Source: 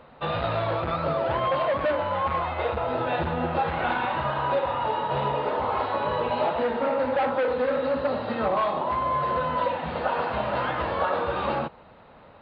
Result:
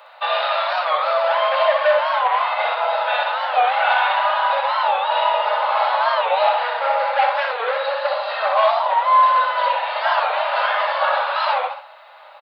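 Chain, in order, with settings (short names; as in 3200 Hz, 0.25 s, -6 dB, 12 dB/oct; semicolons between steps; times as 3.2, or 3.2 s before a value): steep high-pass 600 Hz 48 dB/oct; high shelf 4000 Hz +11 dB; feedback echo 63 ms, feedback 41%, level -6 dB; reverb RT60 0.25 s, pre-delay 3 ms, DRR 5 dB; record warp 45 rpm, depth 160 cents; gain +6 dB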